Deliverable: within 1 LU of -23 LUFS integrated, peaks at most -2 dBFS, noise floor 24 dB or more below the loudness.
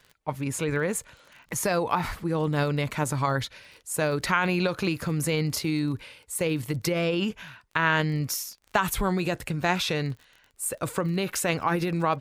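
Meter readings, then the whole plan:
ticks 35/s; loudness -27.5 LUFS; peak -8.5 dBFS; loudness target -23.0 LUFS
-> de-click; gain +4.5 dB

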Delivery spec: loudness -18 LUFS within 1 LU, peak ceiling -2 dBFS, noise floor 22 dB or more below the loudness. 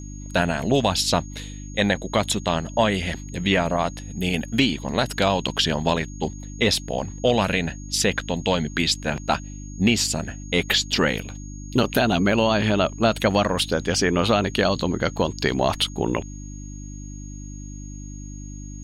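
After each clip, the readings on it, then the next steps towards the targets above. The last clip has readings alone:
hum 50 Hz; harmonics up to 300 Hz; hum level -33 dBFS; steady tone 6600 Hz; tone level -44 dBFS; loudness -22.5 LUFS; peak -6.5 dBFS; loudness target -18.0 LUFS
-> de-hum 50 Hz, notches 6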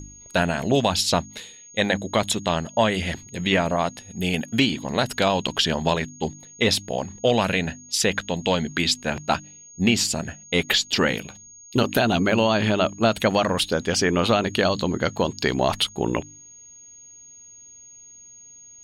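hum none; steady tone 6600 Hz; tone level -44 dBFS
-> notch 6600 Hz, Q 30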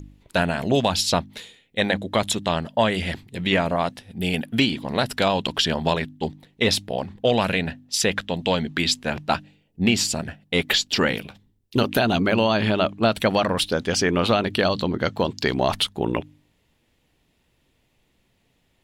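steady tone none; loudness -23.0 LUFS; peak -6.0 dBFS; loudness target -18.0 LUFS
-> gain +5 dB; limiter -2 dBFS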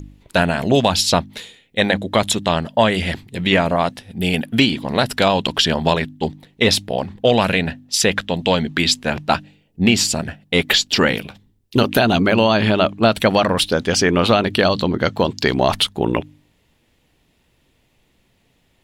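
loudness -18.0 LUFS; peak -2.0 dBFS; noise floor -62 dBFS

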